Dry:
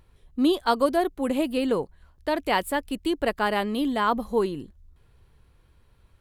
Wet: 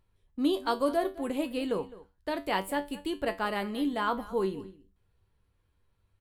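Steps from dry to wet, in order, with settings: gate -47 dBFS, range -7 dB; feedback comb 96 Hz, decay 0.26 s, harmonics all, mix 70%; echo from a far wall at 36 m, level -18 dB

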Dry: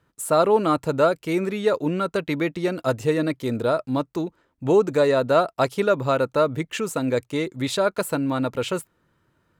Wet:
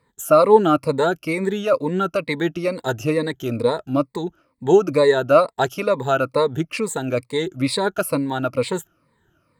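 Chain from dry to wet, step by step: drifting ripple filter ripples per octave 0.96, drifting -2.2 Hz, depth 16 dB

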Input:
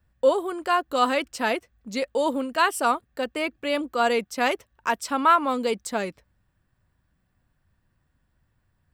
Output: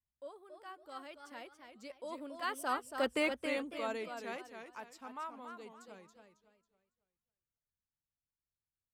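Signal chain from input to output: Doppler pass-by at 3.13 s, 21 m/s, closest 3.3 m; modulated delay 276 ms, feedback 32%, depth 150 cents, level -7 dB; trim -3.5 dB

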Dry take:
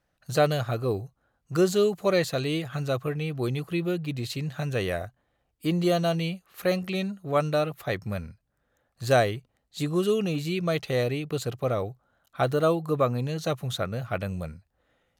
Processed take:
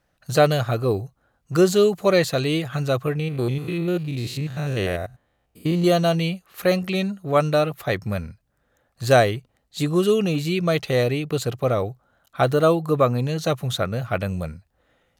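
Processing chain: 3.19–5.84 s: spectrogram pixelated in time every 100 ms; trim +5.5 dB

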